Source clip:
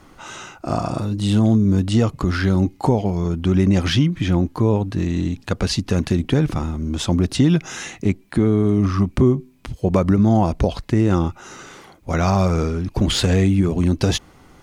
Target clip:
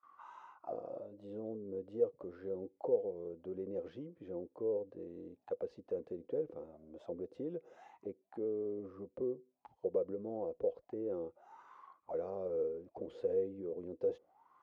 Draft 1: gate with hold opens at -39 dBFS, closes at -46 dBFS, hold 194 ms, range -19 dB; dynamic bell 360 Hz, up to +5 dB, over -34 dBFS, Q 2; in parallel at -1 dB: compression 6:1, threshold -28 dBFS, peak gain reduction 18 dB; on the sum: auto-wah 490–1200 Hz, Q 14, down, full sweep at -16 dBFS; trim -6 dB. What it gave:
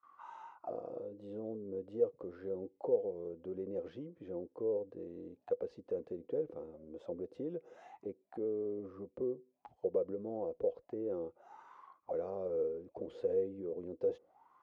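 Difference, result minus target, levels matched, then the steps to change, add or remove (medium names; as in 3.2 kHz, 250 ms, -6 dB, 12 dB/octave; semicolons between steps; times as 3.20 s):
compression: peak gain reduction -9 dB
change: compression 6:1, threshold -39 dBFS, peak gain reduction 27.5 dB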